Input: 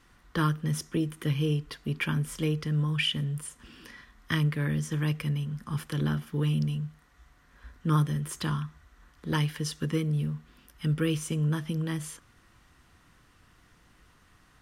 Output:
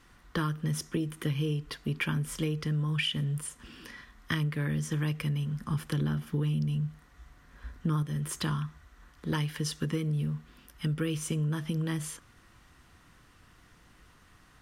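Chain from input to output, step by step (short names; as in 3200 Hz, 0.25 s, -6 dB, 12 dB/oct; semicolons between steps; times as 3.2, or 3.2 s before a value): 5.6–8.03 low shelf 390 Hz +4 dB; compressor 6:1, threshold -28 dBFS, peak gain reduction 10.5 dB; gain +1.5 dB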